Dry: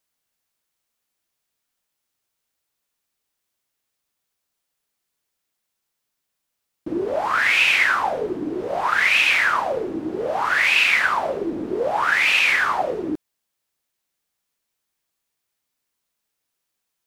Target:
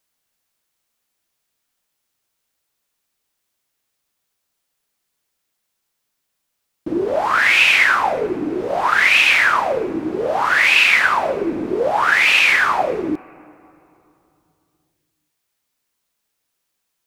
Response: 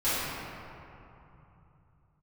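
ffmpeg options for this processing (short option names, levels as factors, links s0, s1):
-filter_complex "[0:a]asplit=2[s0][s1];[1:a]atrim=start_sample=2205[s2];[s1][s2]afir=irnorm=-1:irlink=0,volume=0.0224[s3];[s0][s3]amix=inputs=2:normalize=0,volume=1.58"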